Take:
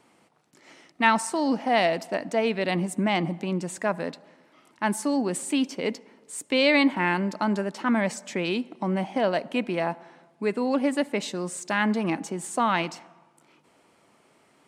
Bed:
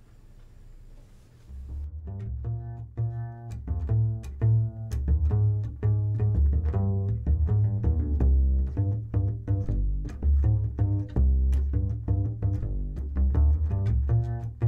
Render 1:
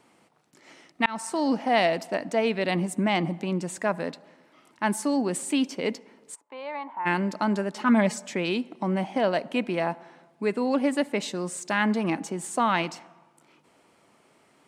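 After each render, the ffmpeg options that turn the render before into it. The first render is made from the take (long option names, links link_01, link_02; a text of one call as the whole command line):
ffmpeg -i in.wav -filter_complex "[0:a]asplit=3[link_01][link_02][link_03];[link_01]afade=type=out:start_time=6.34:duration=0.02[link_04];[link_02]bandpass=frequency=930:width_type=q:width=4.9,afade=type=in:start_time=6.34:duration=0.02,afade=type=out:start_time=7.05:duration=0.02[link_05];[link_03]afade=type=in:start_time=7.05:duration=0.02[link_06];[link_04][link_05][link_06]amix=inputs=3:normalize=0,asettb=1/sr,asplit=3[link_07][link_08][link_09];[link_07]atrim=end=7.754[link_10];[link_08]atrim=start=7.75:end=8.26,asetpts=PTS-STARTPTS,afade=type=in:duration=0.004:curve=qsin,afade=type=out:start_time=0.506:duration=0.004:curve=qsin,aecho=1:1:4.8:0.64,atrim=end_sample=22491[link_11];[link_09]atrim=start=8.256[link_12];[link_10][link_11]acrossfade=duration=0.004:curve1=hsin:curve2=qsin[link_13];[link_13][link_12]acrossfade=duration=0.004:curve1=qsin:curve2=hsin,asplit=2[link_14][link_15];[link_14]atrim=end=1.06,asetpts=PTS-STARTPTS,afade=type=out:start_time=1.056:duration=0.004:curve=hsin[link_16];[link_15]atrim=start=1.06,asetpts=PTS-STARTPTS,afade=type=in:duration=0.42:curve=qsin[link_17];[link_16][link_17]concat=n=2:v=0:a=1" out.wav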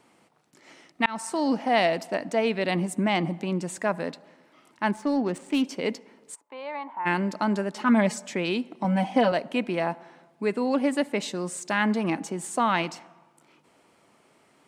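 ffmpeg -i in.wav -filter_complex "[0:a]asettb=1/sr,asplit=3[link_01][link_02][link_03];[link_01]atrim=end=4.914[link_04];[link_02]atrim=start=4.91:end=5.65,asetpts=PTS-STARTPTS,afade=type=in:duration=0.004:curve=qsin,afade=type=out:start_time=0.736:duration=0.004:curve=qsin,adynamicsmooth=sensitivity=4.5:basefreq=2100[link_05];[link_03]atrim=start=5.646[link_06];[link_04][link_05]acrossfade=duration=0.004:curve1=hsin:curve2=qsin[link_07];[link_07][link_06]acrossfade=duration=0.004:curve1=qsin:curve2=hsin,asettb=1/sr,asplit=3[link_08][link_09][link_10];[link_08]atrim=end=8.844[link_11];[link_09]atrim=start=8.84:end=9.32,asetpts=PTS-STARTPTS,afade=type=in:duration=0.004:curve=qsin,afade=type=out:start_time=0.476:duration=0.004:curve=qsin,aecho=1:1:4:0.98,atrim=end_sample=21168[link_12];[link_10]atrim=start=9.316[link_13];[link_11][link_12]acrossfade=duration=0.004:curve1=hsin:curve2=qsin[link_14];[link_14][link_13]acrossfade=duration=0.004:curve1=qsin:curve2=hsin" out.wav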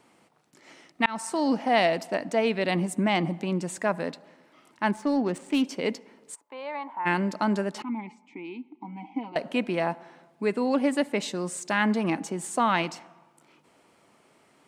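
ffmpeg -i in.wav -filter_complex "[0:a]asettb=1/sr,asplit=3[link_01][link_02][link_03];[link_01]atrim=end=7.824[link_04];[link_02]atrim=start=7.82:end=9.36,asetpts=PTS-STARTPTS,afade=type=in:duration=0.004:curve=qsin,afade=type=out:start_time=1.536:duration=0.004:curve=qsin,asplit=3[link_05][link_06][link_07];[link_05]bandpass=frequency=300:width_type=q:width=8,volume=0dB[link_08];[link_06]bandpass=frequency=870:width_type=q:width=8,volume=-6dB[link_09];[link_07]bandpass=frequency=2240:width_type=q:width=8,volume=-9dB[link_10];[link_08][link_09][link_10]amix=inputs=3:normalize=0[link_11];[link_03]atrim=start=9.356[link_12];[link_04][link_11]acrossfade=duration=0.004:curve1=hsin:curve2=qsin[link_13];[link_13][link_12]acrossfade=duration=0.004:curve1=qsin:curve2=hsin" out.wav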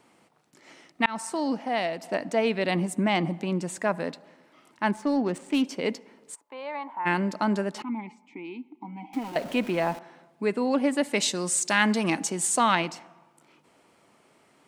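ffmpeg -i in.wav -filter_complex "[0:a]asettb=1/sr,asplit=3[link_01][link_02][link_03];[link_01]atrim=end=9.134[link_04];[link_02]atrim=start=9.13:end=9.99,asetpts=PTS-STARTPTS,afade=type=in:duration=0.004:curve=qsin,afade=type=out:start_time=0.856:duration=0.004:curve=qsin,aeval=exprs='val(0)+0.5*0.0126*sgn(val(0))':channel_layout=same[link_05];[link_03]atrim=start=9.986[link_06];[link_04][link_05]acrossfade=duration=0.004:curve1=hsin:curve2=qsin[link_07];[link_07][link_06]acrossfade=duration=0.004:curve1=qsin:curve2=hsin,asettb=1/sr,asplit=3[link_08][link_09][link_10];[link_08]atrim=end=11.034[link_11];[link_09]atrim=start=11.03:end=12.75,asetpts=PTS-STARTPTS,afade=type=in:duration=0.004:curve=qsin,afade=type=out:start_time=1.716:duration=0.004:curve=qsin,equalizer=frequency=7600:width=0.34:gain=11[link_12];[link_10]atrim=start=12.746[link_13];[link_11][link_12]acrossfade=duration=0.004:curve1=hsin:curve2=qsin[link_14];[link_14][link_13]acrossfade=duration=0.004:curve1=qsin:curve2=hsin,asplit=2[link_15][link_16];[link_15]atrim=end=2.03,asetpts=PTS-STARTPTS,afade=type=out:start_time=1.2:duration=0.83:curve=qua:silence=0.473151[link_17];[link_16]atrim=start=2.03,asetpts=PTS-STARTPTS,afade=type=in:duration=0.004:curve=hsin:silence=0.473151[link_18];[link_17][link_18]concat=n=2:v=0:a=1" out.wav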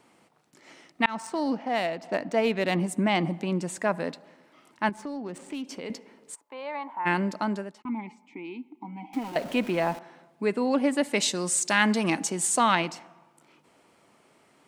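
ffmpeg -i in.wav -filter_complex "[0:a]asettb=1/sr,asplit=3[link_01][link_02][link_03];[link_01]atrim=end=1.094[link_04];[link_02]atrim=start=1.09:end=2.8,asetpts=PTS-STARTPTS,afade=type=in:duration=0.004:curve=qsin,afade=type=out:start_time=1.706:duration=0.004:curve=qsin,adynamicsmooth=sensitivity=8:basefreq=4400[link_05];[link_03]atrim=start=2.796[link_06];[link_04][link_05]acrossfade=duration=0.004:curve1=hsin:curve2=qsin[link_07];[link_07][link_06]acrossfade=duration=0.004:curve1=qsin:curve2=hsin,asettb=1/sr,asplit=3[link_08][link_09][link_10];[link_08]atrim=end=4.894[link_11];[link_09]atrim=start=4.89:end=5.9,asetpts=PTS-STARTPTS,afade=type=in:duration=0.004:curve=qsin,afade=type=out:start_time=1.006:duration=0.004:curve=qsin,acompressor=threshold=-35dB:ratio=3:attack=3.2:release=140:knee=1:detection=peak[link_12];[link_10]atrim=start=5.896[link_13];[link_11][link_12]acrossfade=duration=0.004:curve1=hsin:curve2=qsin[link_14];[link_14][link_13]acrossfade=duration=0.004:curve1=qsin:curve2=hsin,asplit=2[link_15][link_16];[link_15]atrim=end=7.85,asetpts=PTS-STARTPTS,afade=type=out:start_time=7.07:duration=0.78:curve=qsin[link_17];[link_16]atrim=start=7.85,asetpts=PTS-STARTPTS,afade=type=in:duration=0.004:curve=hsin[link_18];[link_17][link_18]concat=n=2:v=0:a=1" out.wav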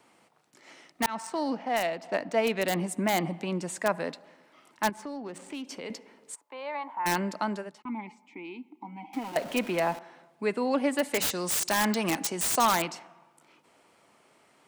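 ffmpeg -i in.wav -filter_complex "[0:a]acrossover=split=440|1200[link_01][link_02][link_03];[link_01]flanger=delay=0.3:depth=8.2:regen=-90:speed=0.28:shape=triangular[link_04];[link_03]aeval=exprs='(mod(12.6*val(0)+1,2)-1)/12.6':channel_layout=same[link_05];[link_04][link_02][link_05]amix=inputs=3:normalize=0" out.wav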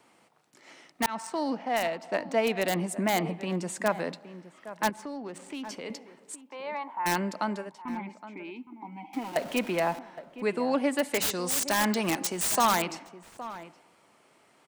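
ffmpeg -i in.wav -filter_complex "[0:a]asplit=2[link_01][link_02];[link_02]adelay=816.3,volume=-14dB,highshelf=frequency=4000:gain=-18.4[link_03];[link_01][link_03]amix=inputs=2:normalize=0" out.wav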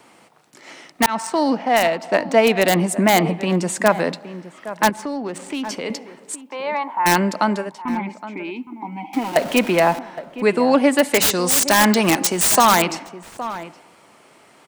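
ffmpeg -i in.wav -af "volume=11.5dB,alimiter=limit=-3dB:level=0:latency=1" out.wav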